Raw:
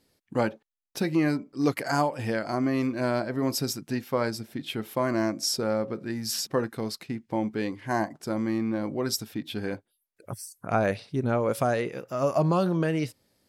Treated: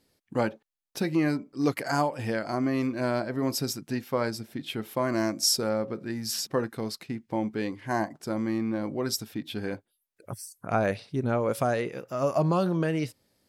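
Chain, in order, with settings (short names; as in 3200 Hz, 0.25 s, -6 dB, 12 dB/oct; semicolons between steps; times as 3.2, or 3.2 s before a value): 5.12–5.69 high shelf 4100 Hz +7.5 dB; gain -1 dB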